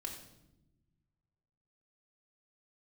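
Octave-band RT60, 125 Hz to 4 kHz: 2.2, 1.8, 1.1, 0.75, 0.70, 0.70 seconds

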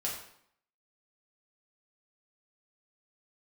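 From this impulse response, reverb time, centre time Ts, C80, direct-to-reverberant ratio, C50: 0.65 s, 39 ms, 7.5 dB, −4.5 dB, 4.5 dB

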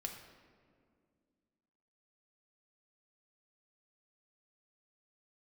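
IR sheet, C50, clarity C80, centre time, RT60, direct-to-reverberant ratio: 6.0 dB, 8.0 dB, 35 ms, 2.1 s, 2.0 dB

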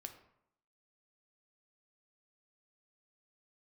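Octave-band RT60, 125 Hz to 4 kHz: 0.75, 0.80, 0.75, 0.75, 0.60, 0.45 seconds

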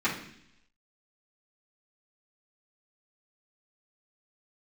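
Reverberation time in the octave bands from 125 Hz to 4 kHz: 0.85, 0.85, 0.75, 0.65, 0.85, 0.95 seconds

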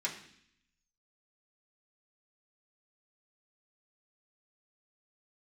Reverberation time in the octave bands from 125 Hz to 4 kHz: 0.95, 0.90, 0.65, 0.65, 0.80, 0.85 seconds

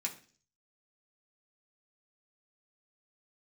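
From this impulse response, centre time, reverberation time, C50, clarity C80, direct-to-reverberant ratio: 12 ms, 0.45 s, 13.0 dB, 17.5 dB, −2.0 dB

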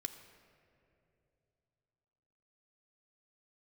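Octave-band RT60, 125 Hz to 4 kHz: 3.9, 3.2, 3.2, 2.4, 2.2, 1.4 seconds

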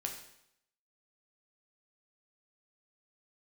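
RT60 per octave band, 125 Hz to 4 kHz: 0.75, 0.75, 0.75, 0.75, 0.75, 0.75 seconds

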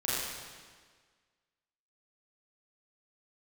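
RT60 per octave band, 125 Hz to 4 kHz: 1.5, 1.6, 1.6, 1.6, 1.6, 1.5 seconds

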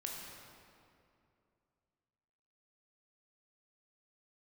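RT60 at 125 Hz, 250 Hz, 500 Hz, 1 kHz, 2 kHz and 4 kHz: 3.0, 2.8, 2.7, 2.4, 2.0, 1.6 seconds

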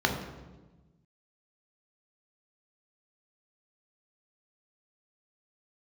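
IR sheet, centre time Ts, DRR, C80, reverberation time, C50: 31 ms, 2.0 dB, 8.5 dB, 1.2 s, 6.0 dB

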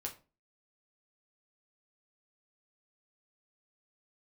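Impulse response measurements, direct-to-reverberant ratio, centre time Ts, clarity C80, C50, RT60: 0.0 dB, 13 ms, 18.5 dB, 13.0 dB, 0.35 s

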